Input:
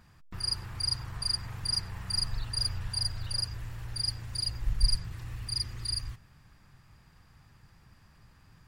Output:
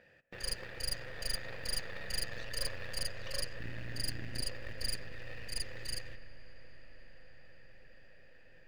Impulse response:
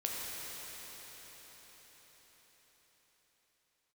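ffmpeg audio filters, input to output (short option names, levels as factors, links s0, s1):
-filter_complex "[0:a]asplit=3[s0][s1][s2];[s0]bandpass=f=530:t=q:w=8,volume=1[s3];[s1]bandpass=f=1840:t=q:w=8,volume=0.501[s4];[s2]bandpass=f=2480:t=q:w=8,volume=0.355[s5];[s3][s4][s5]amix=inputs=3:normalize=0,asplit=2[s6][s7];[s7]acrusher=bits=5:mode=log:mix=0:aa=0.000001,volume=0.531[s8];[s6][s8]amix=inputs=2:normalize=0,asettb=1/sr,asplit=3[s9][s10][s11];[s9]atrim=end=3.604[s12];[s10]atrim=start=3.6:end=4.41,asetpts=PTS-STARTPTS,afade=t=in:d=0.004:c=qsin,afade=t=out:st=0.806:d=0.004:c=qsin,lowshelf=f=360:t=q:w=3:g=8[s13];[s11]atrim=start=4.406[s14];[s12][s13]acrossfade=d=0.004:c1=hsin:c2=qsin[s15];[s15][s14]acrossfade=d=0.004:c1=qsin:c2=hsin,aeval=exprs='0.015*(cos(1*acos(clip(val(0)/0.015,-1,1)))-cos(1*PI/2))+0.00668*(cos(6*acos(clip(val(0)/0.015,-1,1)))-cos(6*PI/2))+0.00188*(cos(8*acos(clip(val(0)/0.015,-1,1)))-cos(8*PI/2))':c=same,asplit=2[s16][s17];[1:a]atrim=start_sample=2205,asetrate=25578,aresample=44100,lowpass=2500[s18];[s17][s18]afir=irnorm=-1:irlink=0,volume=0.15[s19];[s16][s19]amix=inputs=2:normalize=0,volume=3.16"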